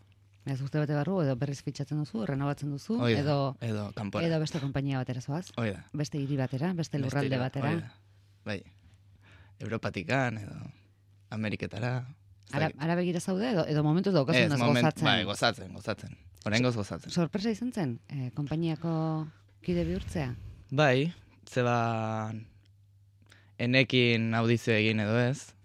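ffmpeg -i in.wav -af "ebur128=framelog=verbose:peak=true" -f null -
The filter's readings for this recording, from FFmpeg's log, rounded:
Integrated loudness:
  I:         -30.1 LUFS
  Threshold: -40.8 LUFS
Loudness range:
  LRA:         7.6 LU
  Threshold: -51.0 LUFS
  LRA low:   -35.0 LUFS
  LRA high:  -27.5 LUFS
True peak:
  Peak:       -8.4 dBFS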